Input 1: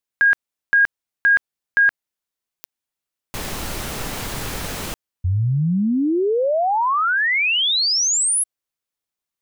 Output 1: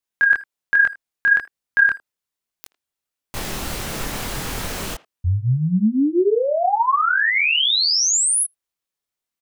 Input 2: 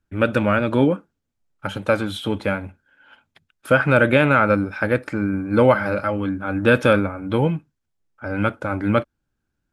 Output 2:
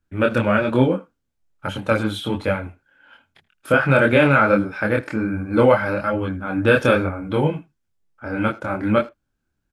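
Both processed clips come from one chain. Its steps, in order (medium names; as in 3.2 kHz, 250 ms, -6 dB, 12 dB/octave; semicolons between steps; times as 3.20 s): speakerphone echo 80 ms, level -20 dB; chorus voices 2, 1.2 Hz, delay 25 ms, depth 3.1 ms; trim +3.5 dB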